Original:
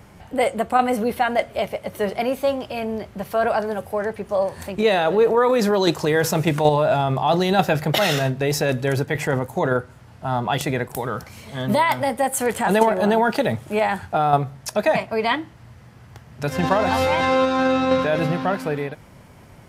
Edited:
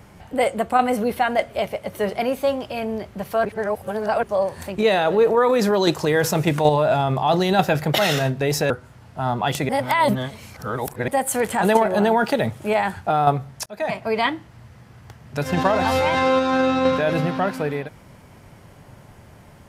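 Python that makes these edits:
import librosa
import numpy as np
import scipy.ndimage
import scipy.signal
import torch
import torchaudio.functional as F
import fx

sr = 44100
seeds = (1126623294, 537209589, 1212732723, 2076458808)

y = fx.edit(x, sr, fx.reverse_span(start_s=3.45, length_s=0.78),
    fx.cut(start_s=8.7, length_s=1.06),
    fx.reverse_span(start_s=10.75, length_s=1.39),
    fx.fade_in_span(start_s=14.72, length_s=0.39), tone=tone)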